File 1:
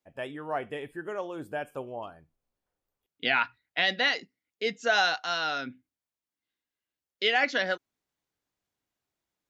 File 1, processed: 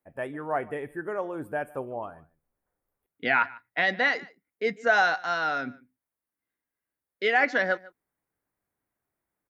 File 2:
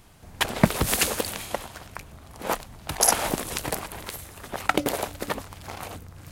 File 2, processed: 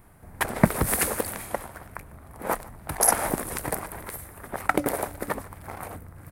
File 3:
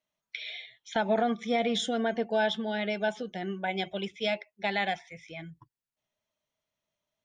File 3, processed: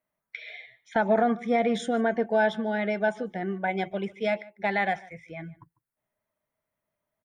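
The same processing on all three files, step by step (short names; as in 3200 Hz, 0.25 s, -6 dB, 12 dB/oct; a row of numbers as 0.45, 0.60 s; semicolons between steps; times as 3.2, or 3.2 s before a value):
band shelf 4400 Hz -13.5 dB; echo 0.148 s -22 dB; dynamic EQ 5900 Hz, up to +5 dB, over -49 dBFS, Q 0.89; match loudness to -27 LUFS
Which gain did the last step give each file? +3.0, 0.0, +4.0 dB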